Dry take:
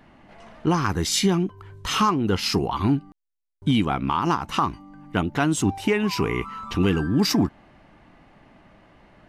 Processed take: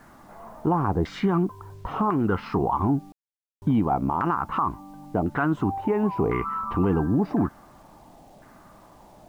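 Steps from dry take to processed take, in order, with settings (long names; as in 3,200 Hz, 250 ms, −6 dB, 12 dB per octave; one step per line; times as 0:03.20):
auto-filter low-pass saw down 0.95 Hz 660–1,500 Hz
brickwall limiter −14 dBFS, peak gain reduction 9.5 dB
bit reduction 10 bits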